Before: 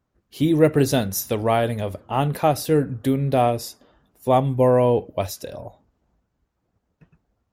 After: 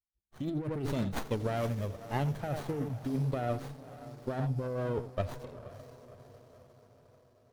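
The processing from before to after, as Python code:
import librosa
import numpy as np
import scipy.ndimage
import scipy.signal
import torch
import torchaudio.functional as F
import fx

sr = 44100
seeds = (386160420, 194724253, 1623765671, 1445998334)

y = fx.bin_expand(x, sr, power=1.5)
y = y + 10.0 ** (-17.0 / 20.0) * np.pad(y, (int(87 * sr / 1000.0), 0))[:len(y)]
y = fx.over_compress(y, sr, threshold_db=-24.0, ratio=-1.0)
y = fx.echo_diffused(y, sr, ms=543, feedback_pct=56, wet_db=-14.5)
y = fx.running_max(y, sr, window=17)
y = F.gain(torch.from_numpy(y), -8.0).numpy()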